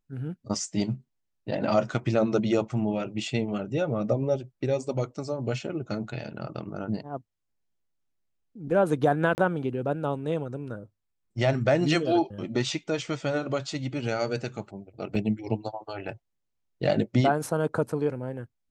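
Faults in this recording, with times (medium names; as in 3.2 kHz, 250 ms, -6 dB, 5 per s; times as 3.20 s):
9.35–9.38 s: dropout 29 ms
15.15 s: dropout 4.1 ms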